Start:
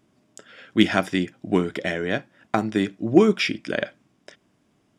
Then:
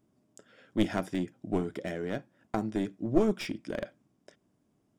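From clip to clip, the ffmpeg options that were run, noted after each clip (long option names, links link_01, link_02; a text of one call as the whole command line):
ffmpeg -i in.wav -af "aeval=exprs='clip(val(0),-1,0.106)':channel_layout=same,equalizer=frequency=2600:width_type=o:width=2.6:gain=-9.5,volume=-6dB" out.wav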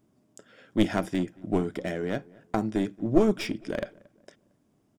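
ffmpeg -i in.wav -filter_complex "[0:a]asplit=2[link_01][link_02];[link_02]adelay=227,lowpass=frequency=1700:poles=1,volume=-24dB,asplit=2[link_03][link_04];[link_04]adelay=227,lowpass=frequency=1700:poles=1,volume=0.41,asplit=2[link_05][link_06];[link_06]adelay=227,lowpass=frequency=1700:poles=1,volume=0.41[link_07];[link_01][link_03][link_05][link_07]amix=inputs=4:normalize=0,volume=4dB" out.wav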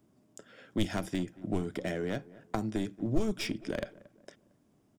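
ffmpeg -i in.wav -filter_complex "[0:a]acrossover=split=130|3000[link_01][link_02][link_03];[link_02]acompressor=threshold=-31dB:ratio=4[link_04];[link_01][link_04][link_03]amix=inputs=3:normalize=0" out.wav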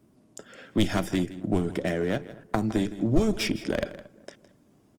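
ffmpeg -i in.wav -af "aecho=1:1:162:0.168,volume=7dB" -ar 48000 -c:a libopus -b:a 24k out.opus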